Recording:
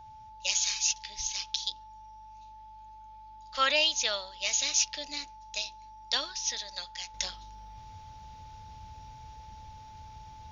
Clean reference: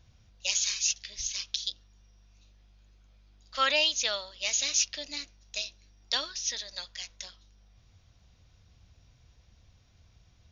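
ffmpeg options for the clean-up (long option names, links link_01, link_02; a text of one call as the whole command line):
ffmpeg -i in.wav -af "bandreject=frequency=870:width=30,asetnsamples=nb_out_samples=441:pad=0,asendcmd='7.14 volume volume -9dB',volume=0dB" out.wav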